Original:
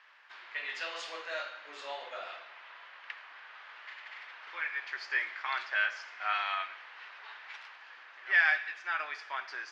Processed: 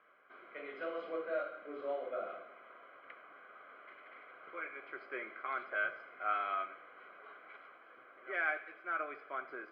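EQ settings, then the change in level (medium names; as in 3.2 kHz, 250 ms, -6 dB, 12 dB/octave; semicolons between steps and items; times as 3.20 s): boxcar filter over 49 samples; distance through air 410 m; hum notches 50/100/150 Hz; +14.5 dB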